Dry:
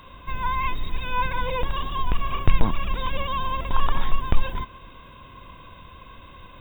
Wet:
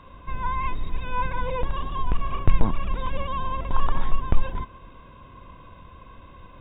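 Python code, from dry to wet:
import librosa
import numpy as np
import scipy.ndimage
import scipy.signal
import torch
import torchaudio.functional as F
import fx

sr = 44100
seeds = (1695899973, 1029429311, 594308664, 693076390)

y = fx.lowpass(x, sr, hz=1300.0, slope=6)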